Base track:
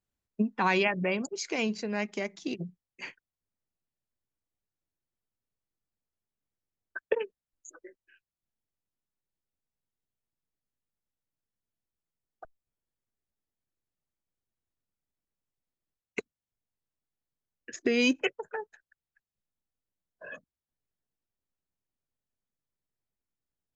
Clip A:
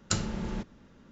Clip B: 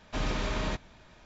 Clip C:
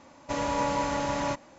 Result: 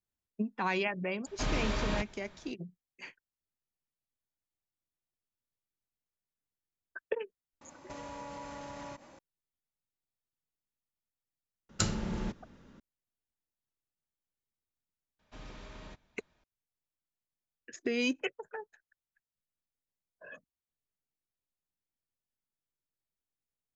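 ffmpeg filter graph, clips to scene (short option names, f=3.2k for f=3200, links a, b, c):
-filter_complex "[2:a]asplit=2[a][b];[0:a]volume=-6dB[c];[3:a]acompressor=threshold=-39dB:ratio=6:attack=3.2:release=140:knee=1:detection=peak[d];[1:a]acontrast=78[e];[a]atrim=end=1.25,asetpts=PTS-STARTPTS,volume=-1.5dB,afade=t=in:d=0.004:c=hsin,afade=t=out:st=1.246:d=0.004:c=hsin,adelay=1260[f];[d]atrim=end=1.58,asetpts=PTS-STARTPTS,volume=-2.5dB,afade=t=in:d=0.004:c=hsin,afade=t=out:st=1.576:d=0.004:c=hsin,adelay=7610[g];[e]atrim=end=1.11,asetpts=PTS-STARTPTS,volume=-8dB,afade=t=in:d=0.004:c=hsin,afade=t=out:st=1.106:d=0.004:c=hsin,adelay=11690[h];[b]atrim=end=1.25,asetpts=PTS-STARTPTS,volume=-17.5dB,afade=t=in:d=0.004:c=hsin,afade=t=out:st=1.246:d=0.004:c=hsin,adelay=15190[i];[c][f][g][h][i]amix=inputs=5:normalize=0"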